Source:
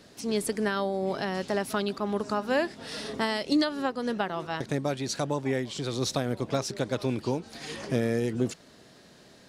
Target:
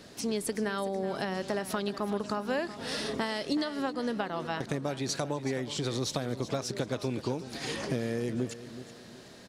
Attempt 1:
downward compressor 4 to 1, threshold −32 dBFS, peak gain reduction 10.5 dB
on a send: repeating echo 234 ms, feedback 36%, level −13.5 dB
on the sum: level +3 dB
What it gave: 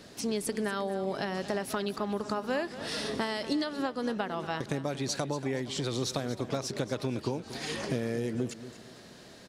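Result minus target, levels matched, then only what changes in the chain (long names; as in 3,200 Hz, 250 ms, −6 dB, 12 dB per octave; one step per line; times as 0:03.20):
echo 140 ms early
change: repeating echo 374 ms, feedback 36%, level −13.5 dB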